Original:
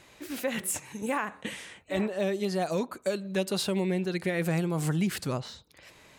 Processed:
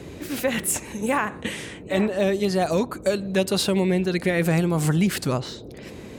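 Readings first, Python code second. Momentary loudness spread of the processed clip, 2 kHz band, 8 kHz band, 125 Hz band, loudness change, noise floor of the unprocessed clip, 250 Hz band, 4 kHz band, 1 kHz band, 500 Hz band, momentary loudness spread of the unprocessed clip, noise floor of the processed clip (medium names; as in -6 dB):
10 LU, +7.0 dB, +7.0 dB, +7.0 dB, +7.0 dB, -57 dBFS, +7.0 dB, +7.0 dB, +7.0 dB, +7.0 dB, 9 LU, -40 dBFS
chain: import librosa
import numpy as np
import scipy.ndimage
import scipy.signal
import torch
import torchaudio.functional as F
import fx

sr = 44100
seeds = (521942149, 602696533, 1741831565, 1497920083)

y = fx.dmg_noise_band(x, sr, seeds[0], low_hz=53.0, high_hz=470.0, level_db=-47.0)
y = y * 10.0 ** (7.0 / 20.0)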